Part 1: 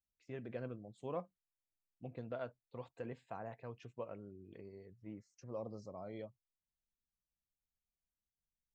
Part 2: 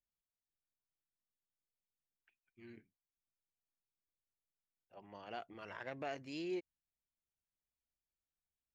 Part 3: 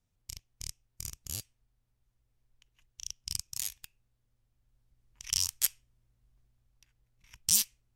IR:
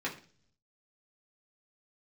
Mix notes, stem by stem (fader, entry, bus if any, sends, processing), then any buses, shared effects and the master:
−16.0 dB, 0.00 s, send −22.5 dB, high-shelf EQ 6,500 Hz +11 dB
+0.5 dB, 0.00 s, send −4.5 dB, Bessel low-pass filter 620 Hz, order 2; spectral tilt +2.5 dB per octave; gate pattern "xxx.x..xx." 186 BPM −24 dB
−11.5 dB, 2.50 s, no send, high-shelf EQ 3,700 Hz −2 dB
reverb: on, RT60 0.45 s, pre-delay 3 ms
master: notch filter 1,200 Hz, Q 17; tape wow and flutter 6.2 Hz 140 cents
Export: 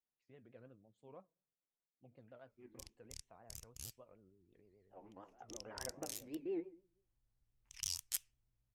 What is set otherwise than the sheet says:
stem 1: missing high-shelf EQ 6,500 Hz +11 dB
stem 3: missing high-shelf EQ 3,700 Hz −2 dB
master: missing notch filter 1,200 Hz, Q 17

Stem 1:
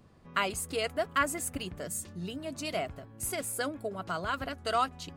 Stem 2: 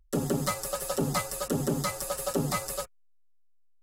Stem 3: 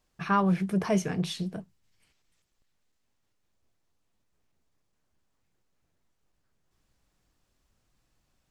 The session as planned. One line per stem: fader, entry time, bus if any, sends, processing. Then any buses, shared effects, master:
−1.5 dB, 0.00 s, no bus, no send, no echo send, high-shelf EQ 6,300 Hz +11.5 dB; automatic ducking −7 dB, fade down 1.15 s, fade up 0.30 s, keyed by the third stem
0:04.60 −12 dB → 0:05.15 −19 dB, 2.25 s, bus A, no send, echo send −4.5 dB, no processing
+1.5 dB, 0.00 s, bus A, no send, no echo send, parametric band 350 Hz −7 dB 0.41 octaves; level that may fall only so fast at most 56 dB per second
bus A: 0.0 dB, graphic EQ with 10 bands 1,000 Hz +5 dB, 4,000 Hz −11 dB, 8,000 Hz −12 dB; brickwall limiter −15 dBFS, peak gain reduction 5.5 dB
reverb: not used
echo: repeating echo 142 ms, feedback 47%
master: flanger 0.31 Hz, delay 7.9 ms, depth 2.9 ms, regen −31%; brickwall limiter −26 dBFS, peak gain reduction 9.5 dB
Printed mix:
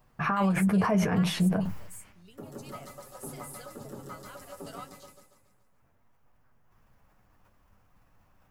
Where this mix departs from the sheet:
stem 1 −1.5 dB → −7.5 dB
stem 3 +1.5 dB → +13.0 dB
master: missing brickwall limiter −26 dBFS, peak gain reduction 9.5 dB

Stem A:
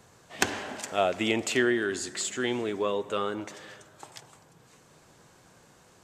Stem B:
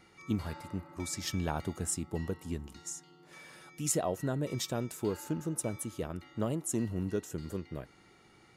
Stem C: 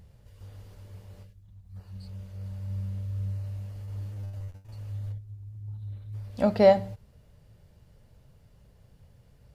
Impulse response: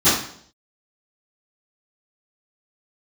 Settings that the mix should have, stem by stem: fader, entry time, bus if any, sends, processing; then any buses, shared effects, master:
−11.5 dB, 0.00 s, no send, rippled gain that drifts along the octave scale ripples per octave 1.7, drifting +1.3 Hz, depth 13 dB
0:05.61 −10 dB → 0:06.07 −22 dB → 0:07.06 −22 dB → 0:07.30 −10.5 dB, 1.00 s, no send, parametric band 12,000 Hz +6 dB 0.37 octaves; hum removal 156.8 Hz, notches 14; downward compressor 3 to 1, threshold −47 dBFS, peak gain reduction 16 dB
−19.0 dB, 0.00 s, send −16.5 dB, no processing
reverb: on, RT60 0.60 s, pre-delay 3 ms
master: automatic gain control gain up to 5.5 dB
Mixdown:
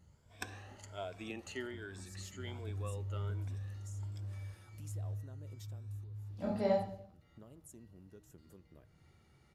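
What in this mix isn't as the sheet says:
stem A −11.5 dB → −20.5 dB
master: missing automatic gain control gain up to 5.5 dB

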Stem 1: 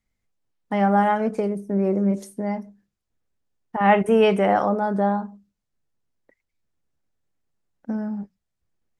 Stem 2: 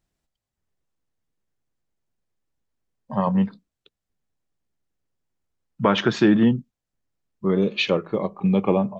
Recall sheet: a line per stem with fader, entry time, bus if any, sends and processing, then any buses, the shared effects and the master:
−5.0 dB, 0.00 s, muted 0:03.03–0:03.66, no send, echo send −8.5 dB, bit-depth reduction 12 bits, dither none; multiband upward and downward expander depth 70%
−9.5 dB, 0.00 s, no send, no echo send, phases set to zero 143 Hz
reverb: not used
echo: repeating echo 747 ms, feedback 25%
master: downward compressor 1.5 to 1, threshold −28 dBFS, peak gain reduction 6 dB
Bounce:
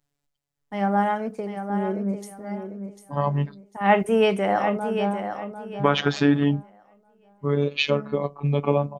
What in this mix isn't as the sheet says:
stem 2 −9.5 dB → +1.5 dB
master: missing downward compressor 1.5 to 1, threshold −28 dBFS, peak gain reduction 6 dB

